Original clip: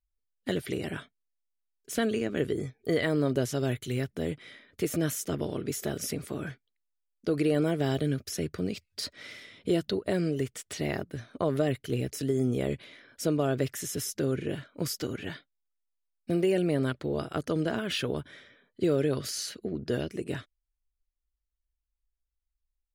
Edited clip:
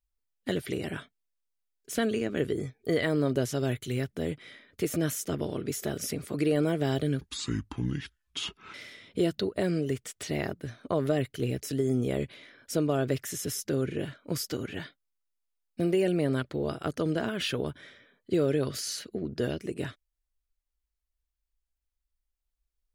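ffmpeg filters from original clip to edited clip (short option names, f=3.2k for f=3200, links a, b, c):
-filter_complex "[0:a]asplit=4[a][b][c][d];[a]atrim=end=6.342[e];[b]atrim=start=7.328:end=8.204[f];[c]atrim=start=8.2:end=9.24,asetpts=PTS-STARTPTS,asetrate=29988,aresample=44100,atrim=end_sample=67447,asetpts=PTS-STARTPTS[g];[d]atrim=start=9.236[h];[e][f]acrossfade=d=0.004:c1=hsin:c2=hsin[i];[i][g]acrossfade=d=0.004:c1=hsin:c2=hsin[j];[j][h]acrossfade=d=0.004:c1=hsin:c2=hsin"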